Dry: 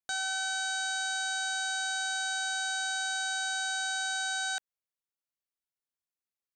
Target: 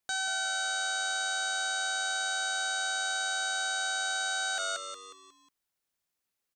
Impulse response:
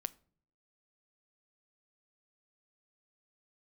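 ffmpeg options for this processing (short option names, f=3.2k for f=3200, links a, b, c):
-filter_complex "[0:a]asplit=6[a][b][c][d][e][f];[b]adelay=181,afreqshift=-96,volume=-9.5dB[g];[c]adelay=362,afreqshift=-192,volume=-17dB[h];[d]adelay=543,afreqshift=-288,volume=-24.6dB[i];[e]adelay=724,afreqshift=-384,volume=-32.1dB[j];[f]adelay=905,afreqshift=-480,volume=-39.6dB[k];[a][g][h][i][j][k]amix=inputs=6:normalize=0,alimiter=level_in=8dB:limit=-24dB:level=0:latency=1:release=15,volume=-8dB,volume=8.5dB"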